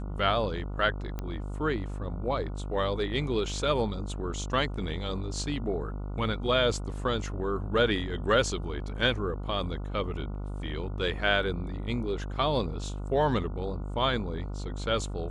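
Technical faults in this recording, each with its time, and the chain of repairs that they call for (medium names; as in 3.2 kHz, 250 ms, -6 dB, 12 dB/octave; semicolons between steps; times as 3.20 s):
buzz 50 Hz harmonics 29 -35 dBFS
1.19 s: pop -21 dBFS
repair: de-click; de-hum 50 Hz, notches 29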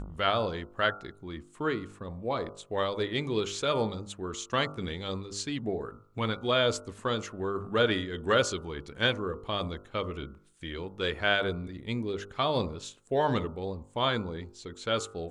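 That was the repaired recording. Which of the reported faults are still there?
nothing left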